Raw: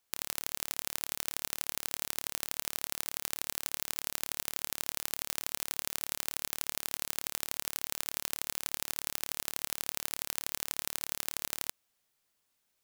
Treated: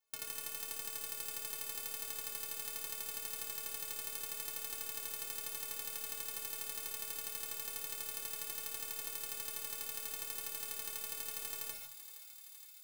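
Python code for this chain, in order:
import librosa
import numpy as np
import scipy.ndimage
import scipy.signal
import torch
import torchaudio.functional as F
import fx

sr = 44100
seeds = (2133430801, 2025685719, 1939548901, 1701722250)

p1 = fx.stiff_resonator(x, sr, f0_hz=130.0, decay_s=0.5, stiffness=0.03)
p2 = p1 + fx.echo_thinned(p1, sr, ms=467, feedback_pct=77, hz=980.0, wet_db=-12, dry=0)
p3 = fx.rev_gated(p2, sr, seeds[0], gate_ms=170, shape='rising', drr_db=5.0)
y = p3 * 10.0 ** (6.5 / 20.0)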